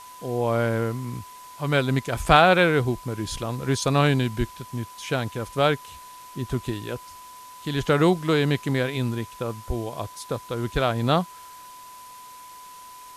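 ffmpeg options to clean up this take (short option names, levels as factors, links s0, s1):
-af "bandreject=f=1000:w=30,afwtdn=0.004"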